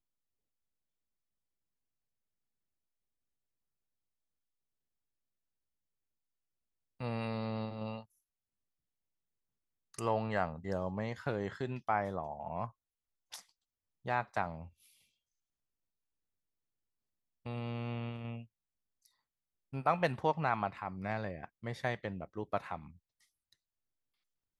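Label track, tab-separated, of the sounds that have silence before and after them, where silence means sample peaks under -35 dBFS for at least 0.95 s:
7.010000	7.970000	sound
9.990000	14.540000	sound
17.460000	18.350000	sound
19.740000	22.760000	sound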